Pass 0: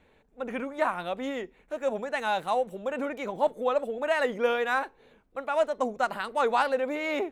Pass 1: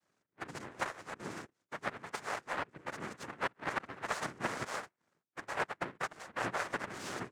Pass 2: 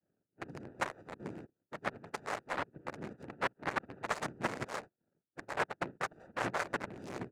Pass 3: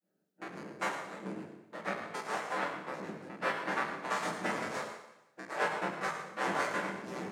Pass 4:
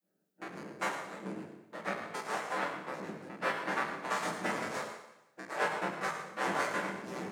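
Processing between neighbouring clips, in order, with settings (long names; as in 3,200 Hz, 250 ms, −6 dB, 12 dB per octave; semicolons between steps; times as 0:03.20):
cochlear-implant simulation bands 3; power curve on the samples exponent 1.4; multiband upward and downward compressor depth 40%; level −7 dB
adaptive Wiener filter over 41 samples; level +2 dB
high-pass filter 140 Hz 24 dB per octave; convolution reverb RT60 0.95 s, pre-delay 7 ms, DRR −9.5 dB; level −6.5 dB
high-shelf EQ 11,000 Hz +5.5 dB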